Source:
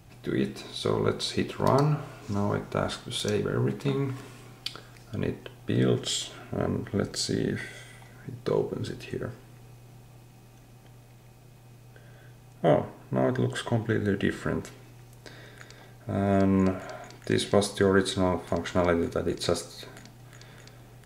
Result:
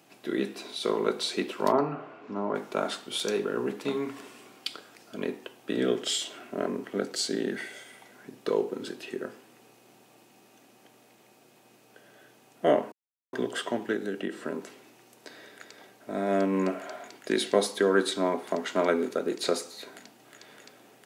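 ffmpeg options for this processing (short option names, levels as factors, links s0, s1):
-filter_complex "[0:a]asplit=3[s0][s1][s2];[s0]afade=t=out:st=1.71:d=0.02[s3];[s1]lowpass=1900,afade=t=in:st=1.71:d=0.02,afade=t=out:st=2.54:d=0.02[s4];[s2]afade=t=in:st=2.54:d=0.02[s5];[s3][s4][s5]amix=inputs=3:normalize=0,asettb=1/sr,asplit=3[s6][s7][s8];[s6]atrim=end=13.944[s9];[s7]atrim=start=13.94:end=14.7,asetpts=PTS-STARTPTS,afade=t=in:d=0.004:c=qsin,afade=t=out:st=0.756:d=0.004:c=qsin,acrossover=split=1200|2700[s10][s11][s12];[s10]acompressor=threshold=0.0501:ratio=4[s13];[s11]acompressor=threshold=0.00398:ratio=4[s14];[s12]acompressor=threshold=0.00316:ratio=4[s15];[s13][s14][s15]amix=inputs=3:normalize=0[s16];[s8]atrim=start=14.696[s17];[s9][s16]acrossfade=d=0.004:c1=hsin:c2=qsin[s18];[s18][s17]acrossfade=d=0.004:c1=qsin:c2=hsin,asplit=3[s19][s20][s21];[s19]atrim=end=12.92,asetpts=PTS-STARTPTS,afade=t=out:st=12.916:d=0.004:c=hsin[s22];[s20]atrim=start=12.92:end=13.33,asetpts=PTS-STARTPTS,volume=0[s23];[s21]atrim=start=13.33,asetpts=PTS-STARTPTS,afade=t=in:d=0.004:c=hsin[s24];[s22][s23][s24]concat=n=3:v=0:a=1,highpass=f=230:w=0.5412,highpass=f=230:w=1.3066,equalizer=f=2800:w=6:g=3"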